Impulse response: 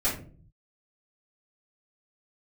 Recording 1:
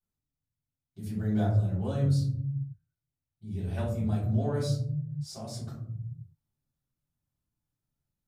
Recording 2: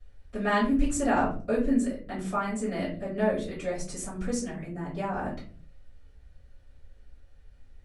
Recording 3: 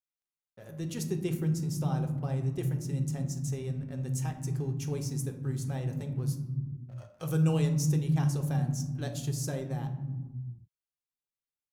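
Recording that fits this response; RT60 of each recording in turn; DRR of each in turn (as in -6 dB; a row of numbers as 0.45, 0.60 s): 2; 0.70 s, 0.45 s, not exponential; -10.5, -11.5, 4.0 dB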